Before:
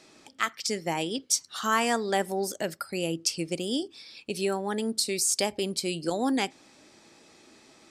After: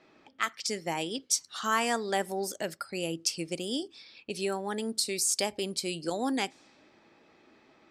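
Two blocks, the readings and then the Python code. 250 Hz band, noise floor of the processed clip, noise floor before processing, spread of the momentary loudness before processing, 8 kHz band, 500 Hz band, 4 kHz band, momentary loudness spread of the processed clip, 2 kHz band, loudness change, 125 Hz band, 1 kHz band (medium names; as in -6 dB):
-4.0 dB, -62 dBFS, -57 dBFS, 7 LU, -2.0 dB, -3.5 dB, -2.0 dB, 8 LU, -2.0 dB, -2.5 dB, -4.5 dB, -2.5 dB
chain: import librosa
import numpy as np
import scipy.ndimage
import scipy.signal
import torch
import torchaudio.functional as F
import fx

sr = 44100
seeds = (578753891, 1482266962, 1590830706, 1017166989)

y = fx.env_lowpass(x, sr, base_hz=2200.0, full_db=-27.5)
y = fx.low_shelf(y, sr, hz=420.0, db=-3.0)
y = F.gain(torch.from_numpy(y), -2.0).numpy()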